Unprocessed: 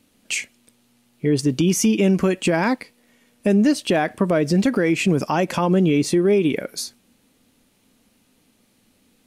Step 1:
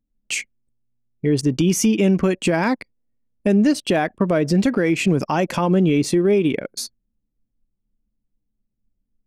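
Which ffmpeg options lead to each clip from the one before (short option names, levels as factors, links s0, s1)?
-af "anlmdn=10,lowshelf=f=69:g=6.5"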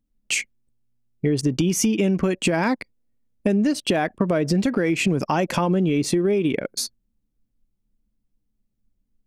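-af "acompressor=threshold=0.112:ratio=6,volume=1.26"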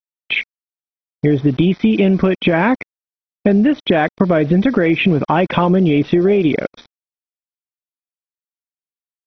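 -af "aresample=8000,aresample=44100,aeval=exprs='val(0)*gte(abs(val(0)),0.00944)':c=same,volume=2.24" -ar 24000 -c:a mp2 -b:a 32k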